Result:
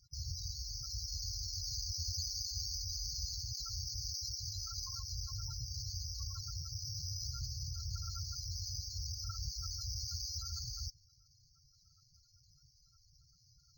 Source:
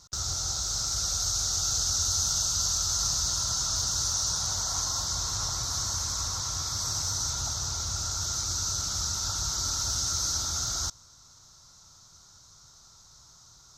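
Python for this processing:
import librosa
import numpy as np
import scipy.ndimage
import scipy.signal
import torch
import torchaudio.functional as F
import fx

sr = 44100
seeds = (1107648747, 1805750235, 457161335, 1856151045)

y = fx.spec_topn(x, sr, count=16)
y = np.interp(np.arange(len(y)), np.arange(len(y))[::4], y[::4])
y = F.gain(torch.from_numpy(y), -4.0).numpy()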